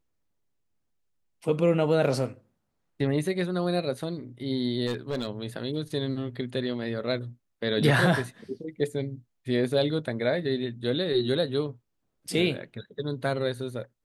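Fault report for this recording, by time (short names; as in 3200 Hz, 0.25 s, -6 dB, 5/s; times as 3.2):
4.86–5.28 clipped -25 dBFS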